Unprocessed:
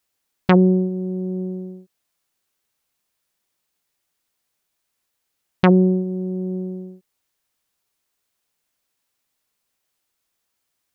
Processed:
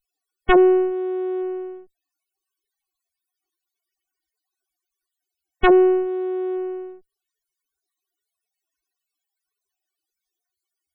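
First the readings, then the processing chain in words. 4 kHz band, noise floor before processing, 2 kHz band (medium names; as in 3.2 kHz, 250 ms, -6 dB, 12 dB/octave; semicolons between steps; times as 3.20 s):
+1.5 dB, -77 dBFS, +4.0 dB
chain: comb filter that takes the minimum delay 2.7 ms; loudest bins only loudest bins 32; trim +2.5 dB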